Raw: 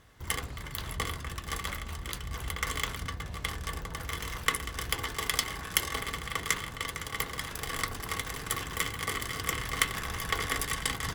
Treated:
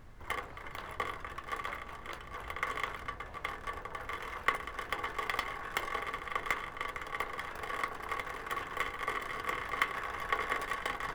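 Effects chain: tracing distortion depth 0.15 ms; three-band isolator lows -18 dB, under 370 Hz, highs -18 dB, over 2.2 kHz; added noise brown -53 dBFS; trim +1.5 dB

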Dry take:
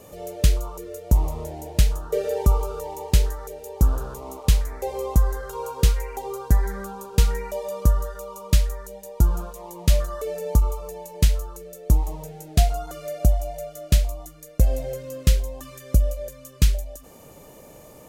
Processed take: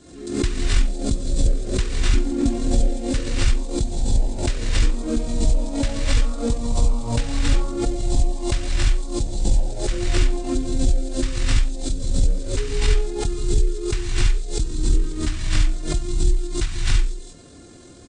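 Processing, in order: gated-style reverb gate 360 ms rising, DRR -7 dB; pitch shift -9 st; swell ahead of each attack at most 77 dB/s; trim -5.5 dB

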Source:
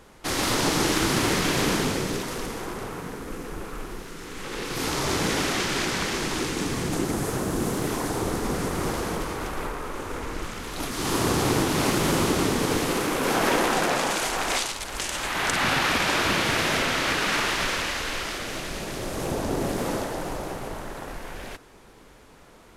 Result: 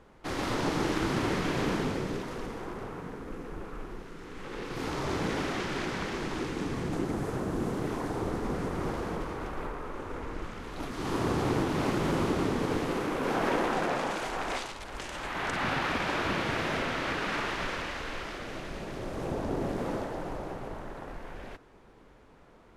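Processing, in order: low-pass 1.7 kHz 6 dB/octave; trim -4.5 dB

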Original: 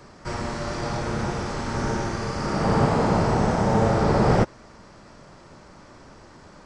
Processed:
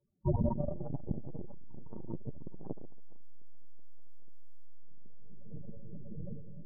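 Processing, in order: tracing distortion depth 0.25 ms; boxcar filter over 9 samples; peaking EQ 160 Hz +4.5 dB 0.31 oct; two-band feedback delay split 740 Hz, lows 633 ms, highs 238 ms, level -10 dB; gate -40 dBFS, range -34 dB; 1.72–2.16 s: bass shelf 69 Hz -4 dB; loudest bins only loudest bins 8; algorithmic reverb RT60 1.9 s, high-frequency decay 0.45×, pre-delay 45 ms, DRR 14.5 dB; transformer saturation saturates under 370 Hz; trim +5 dB

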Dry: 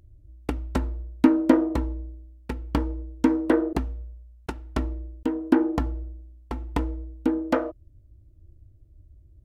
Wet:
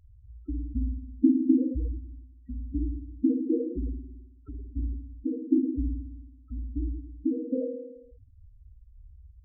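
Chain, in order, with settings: knee-point frequency compression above 1.2 kHz 1.5:1; flutter echo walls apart 9.3 m, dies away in 1.1 s; loudest bins only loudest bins 4; trim -2.5 dB

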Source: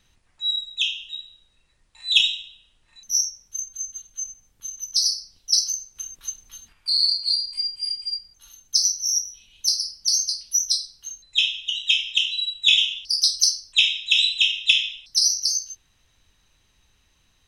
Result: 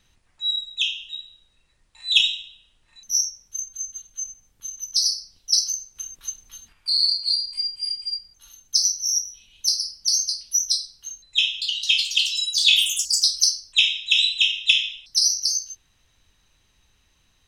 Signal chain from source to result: 11.40–13.77 s: ever faster or slower copies 216 ms, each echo +5 st, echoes 3, each echo -6 dB

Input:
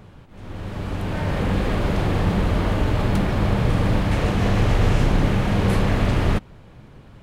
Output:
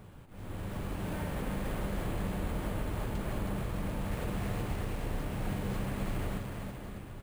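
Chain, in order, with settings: compression 12:1, threshold -26 dBFS, peak gain reduction 14.5 dB; on a send: bouncing-ball echo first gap 320 ms, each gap 0.9×, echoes 5; on the sum: careless resampling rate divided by 4×, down none, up hold; trim -6.5 dB

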